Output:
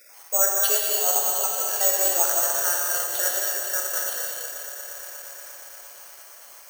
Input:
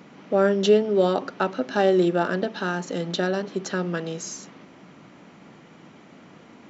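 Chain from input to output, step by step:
time-frequency cells dropped at random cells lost 27%
high-pass filter 620 Hz 24 dB per octave
high-shelf EQ 3,000 Hz +5 dB
transient designer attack −2 dB, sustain −8 dB
on a send: echo that builds up and dies away 118 ms, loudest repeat 5, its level −17.5 dB
on the sum: reverb whose tail is shaped and stops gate 350 ms flat, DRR −2 dB
bad sample-rate conversion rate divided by 6×, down filtered, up zero stuff
feedback echo at a low word length 206 ms, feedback 35%, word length 7 bits, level −8 dB
level −3.5 dB

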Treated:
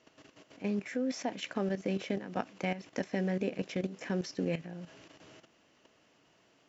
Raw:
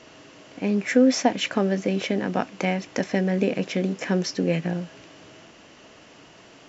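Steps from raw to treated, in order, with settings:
high-pass filter 48 Hz 6 dB per octave
output level in coarse steps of 12 dB
level −7 dB

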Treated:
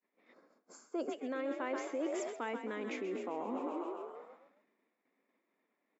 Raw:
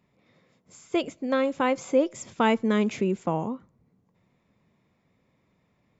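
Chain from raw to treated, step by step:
parametric band 1,800 Hz +6 dB 0.7 octaves
brickwall limiter −20.5 dBFS, peak gain reduction 11 dB
high-shelf EQ 4,000 Hz −11 dB
on a send: echo with shifted repeats 132 ms, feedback 61%, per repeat +44 Hz, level −9 dB
on the sum: gain on a spectral selection 0:00.33–0:01.12, 1,700–4,100 Hz −14 dB
downward expander −56 dBFS
reversed playback
downward compressor 6 to 1, threshold −41 dBFS, peak gain reduction 16 dB
reversed playback
Butterworth high-pass 250 Hz 36 dB per octave
level +6 dB

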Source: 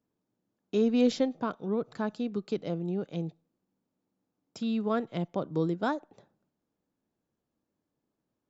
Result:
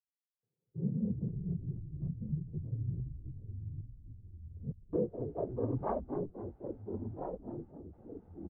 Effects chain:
adaptive Wiener filter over 41 samples
low-pass filter 1,300 Hz
comb filter 1.9 ms, depth 43%
frequency shifter −57 Hz
hum with harmonics 400 Hz, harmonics 34, −67 dBFS −3 dB per octave
transient designer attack −6 dB, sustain +7 dB
low-pass filter sweep 150 Hz → 800 Hz, 0:04.08–0:05.67
cochlear-implant simulation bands 16
gate pattern "..xxxx.x.xxxxx" 70 BPM −60 dB
delay with pitch and tempo change per echo 240 ms, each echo −3 semitones, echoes 3, each echo −6 dB
echo with shifted repeats 257 ms, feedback 49%, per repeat −60 Hz, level −10.5 dB
level −6 dB

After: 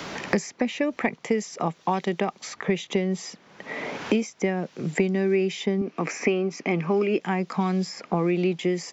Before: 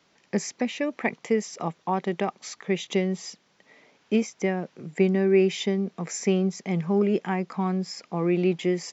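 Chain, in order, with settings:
0:05.81–0:07.20: loudspeaker in its box 120–6,200 Hz, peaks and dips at 190 Hz −8 dB, 290 Hz +10 dB, 1,200 Hz +4 dB, 2,500 Hz +9 dB, 3,700 Hz −5 dB
multiband upward and downward compressor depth 100%

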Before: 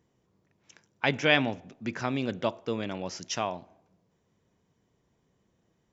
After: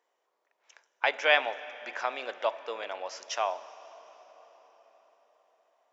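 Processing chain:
high-pass filter 580 Hz 24 dB per octave
high-shelf EQ 3,000 Hz −9 dB
convolution reverb RT60 5.3 s, pre-delay 41 ms, DRR 15 dB
level +3.5 dB

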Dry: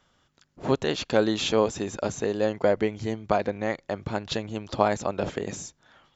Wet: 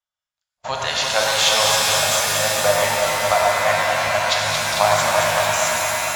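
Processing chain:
drawn EQ curve 100 Hz 0 dB, 350 Hz −22 dB, 620 Hz +8 dB
on a send: delay that swaps between a low-pass and a high-pass 112 ms, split 2,200 Hz, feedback 88%, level −5 dB
on the sum: noise gate −37 dBFS, range −33 dB
high-shelf EQ 3,700 Hz +9.5 dB
reverb with rising layers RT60 2.4 s, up +7 semitones, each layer −2 dB, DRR 0 dB
level −3.5 dB

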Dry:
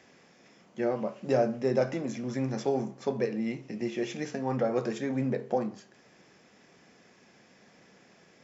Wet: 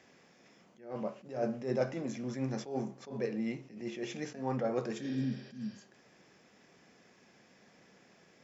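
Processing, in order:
healed spectral selection 0:05.05–0:05.79, 280–5,800 Hz both
level that may rise only so fast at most 130 dB per second
level −3.5 dB

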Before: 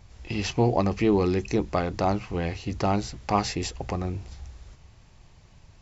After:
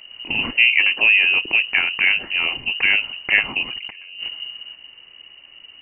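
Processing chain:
voice inversion scrambler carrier 2,900 Hz
0:00.65–0:01.32: parametric band 77 Hz −13.5 dB 1.9 octaves
0:03.63–0:04.29: compressor whose output falls as the input rises −41 dBFS, ratio −1
level +6.5 dB

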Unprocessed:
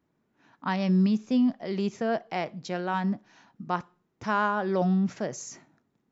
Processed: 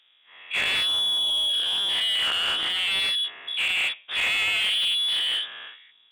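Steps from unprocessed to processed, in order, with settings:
every bin's largest magnitude spread in time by 240 ms
voice inversion scrambler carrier 3,600 Hz
mid-hump overdrive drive 24 dB, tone 1,700 Hz, clips at −7.5 dBFS
level −4.5 dB

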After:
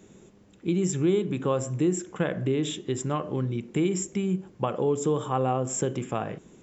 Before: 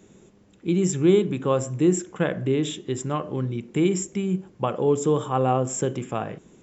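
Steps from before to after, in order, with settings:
downward compressor 2 to 1, threshold −24 dBFS, peak gain reduction 6.5 dB

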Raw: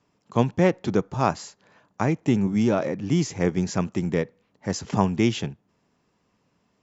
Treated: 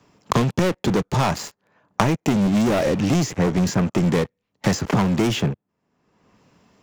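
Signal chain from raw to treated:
0:03.14–0:03.84: downward expander −28 dBFS
leveller curve on the samples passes 5
multiband upward and downward compressor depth 100%
level −9 dB

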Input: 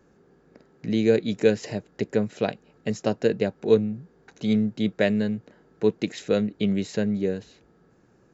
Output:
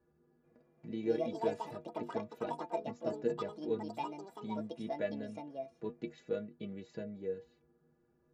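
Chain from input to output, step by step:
low-pass filter 1,200 Hz 6 dB per octave
stiff-string resonator 72 Hz, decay 0.32 s, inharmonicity 0.03
delay with pitch and tempo change per echo 441 ms, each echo +6 semitones, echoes 2
level −4.5 dB

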